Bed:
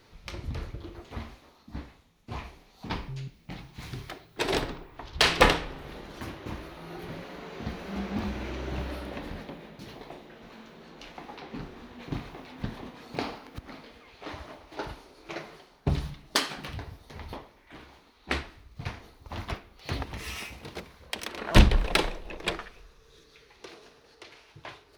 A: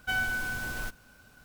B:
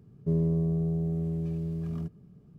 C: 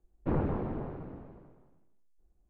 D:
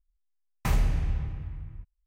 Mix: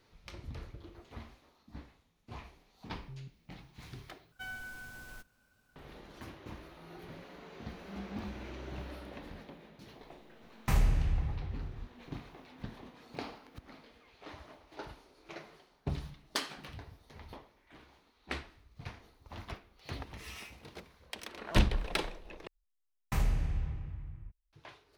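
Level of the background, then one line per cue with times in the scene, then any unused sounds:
bed −9 dB
0:04.32: overwrite with A −14 dB
0:10.03: mix in D −2.5 dB + upward compression, threshold −48 dBFS
0:22.47: overwrite with D −5.5 dB
not used: B, C

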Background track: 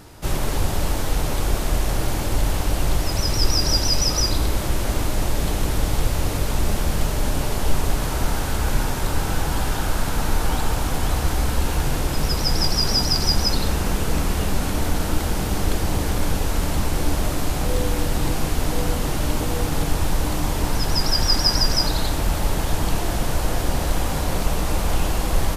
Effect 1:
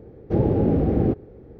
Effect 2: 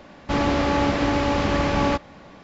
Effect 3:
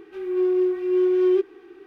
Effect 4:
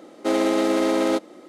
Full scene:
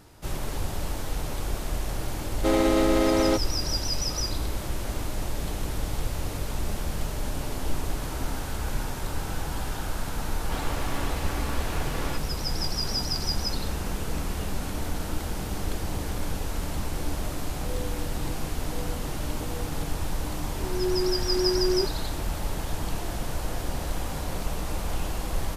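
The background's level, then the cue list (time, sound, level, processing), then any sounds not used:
background track −8.5 dB
0:02.19: mix in 4 −1.5 dB
0:07.20: mix in 4 −16.5 dB + formant resonators in series i
0:10.21: mix in 2 −10 dB + full-wave rectification
0:20.44: mix in 3 −6.5 dB
not used: 1

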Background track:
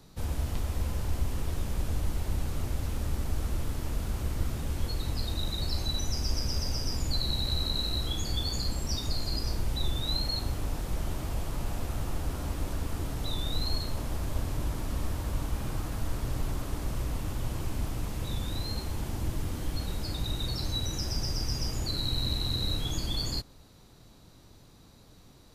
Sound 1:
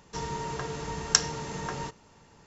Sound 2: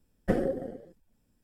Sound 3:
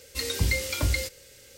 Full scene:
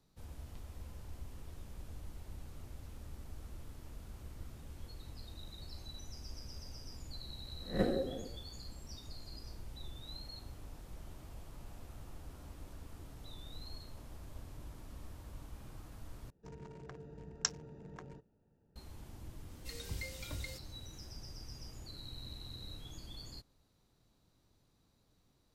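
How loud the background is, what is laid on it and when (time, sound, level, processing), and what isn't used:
background track −17.5 dB
0:07.51: mix in 2 −6.5 dB + peak hold with a rise ahead of every peak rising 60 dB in 0.32 s
0:16.30: overwrite with 1 −12.5 dB + adaptive Wiener filter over 41 samples
0:19.50: mix in 3 −17.5 dB

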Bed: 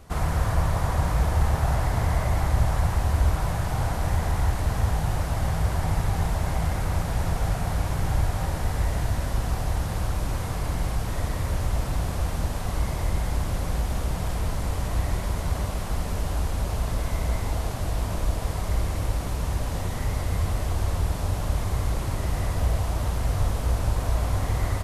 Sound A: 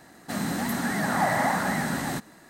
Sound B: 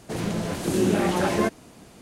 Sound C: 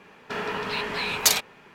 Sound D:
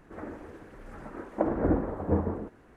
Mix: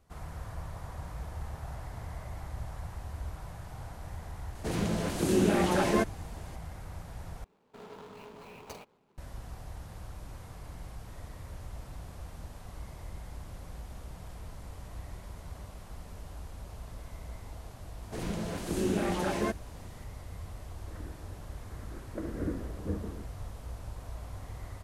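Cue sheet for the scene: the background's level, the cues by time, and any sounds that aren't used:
bed −17.5 dB
0:04.55: mix in B −3.5 dB
0:07.44: overwrite with C −14.5 dB + running median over 25 samples
0:18.03: mix in B −8 dB
0:20.77: mix in D −7 dB + phaser with its sweep stopped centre 2,000 Hz, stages 4
not used: A

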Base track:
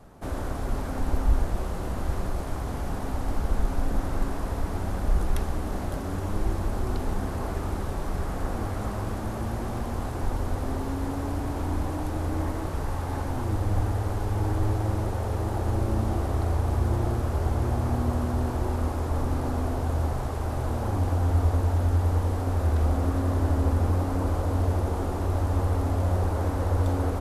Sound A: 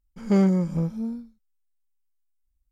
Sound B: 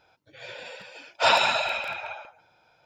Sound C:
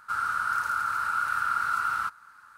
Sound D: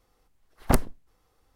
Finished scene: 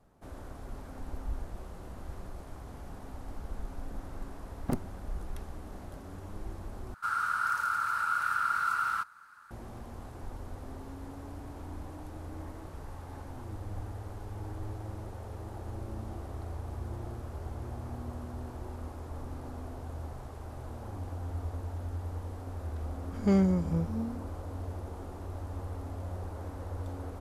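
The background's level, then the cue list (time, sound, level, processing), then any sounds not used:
base track −14 dB
0:03.99: mix in D −17.5 dB + parametric band 210 Hz +12 dB 2.7 octaves
0:06.94: overwrite with C −2.5 dB
0:22.96: mix in A −5 dB
not used: B

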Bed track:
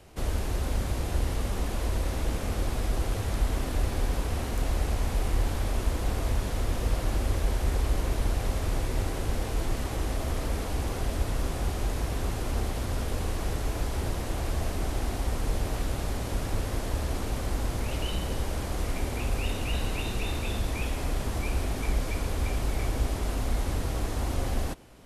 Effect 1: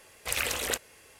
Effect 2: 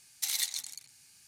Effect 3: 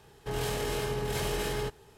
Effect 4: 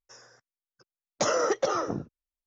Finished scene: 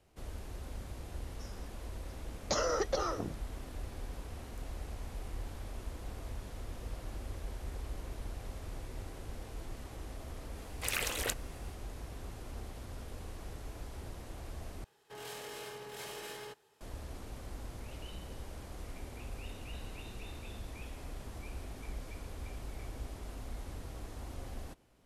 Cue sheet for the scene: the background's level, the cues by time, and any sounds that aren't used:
bed track −15 dB
0:01.30: mix in 4 −7 dB + parametric band 4,400 Hz +9 dB 0.32 octaves
0:10.56: mix in 1 −5 dB
0:14.84: overwrite with 3 −9.5 dB + high-pass filter 570 Hz 6 dB per octave
not used: 2

